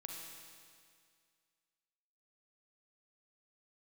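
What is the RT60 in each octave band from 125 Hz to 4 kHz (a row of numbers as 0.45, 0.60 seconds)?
2.1, 2.1, 2.1, 2.1, 2.1, 2.1 seconds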